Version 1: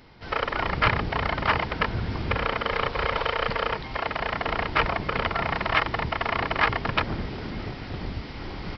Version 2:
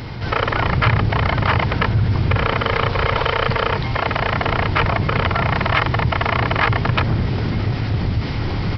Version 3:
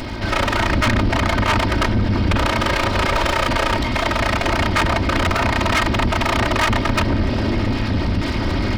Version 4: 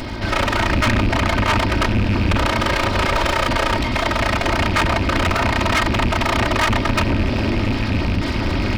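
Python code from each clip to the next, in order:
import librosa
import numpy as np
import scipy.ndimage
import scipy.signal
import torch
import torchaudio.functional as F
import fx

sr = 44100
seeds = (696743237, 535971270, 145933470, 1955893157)

y1 = fx.peak_eq(x, sr, hz=110.0, db=12.0, octaves=1.0)
y1 = fx.env_flatten(y1, sr, amount_pct=50)
y1 = y1 * librosa.db_to_amplitude(1.0)
y2 = fx.lower_of_two(y1, sr, delay_ms=3.2)
y2 = 10.0 ** (-16.5 / 20.0) * np.tanh(y2 / 10.0 ** (-16.5 / 20.0))
y2 = y2 * librosa.db_to_amplitude(5.0)
y3 = fx.rattle_buzz(y2, sr, strikes_db=-17.0, level_db=-16.0)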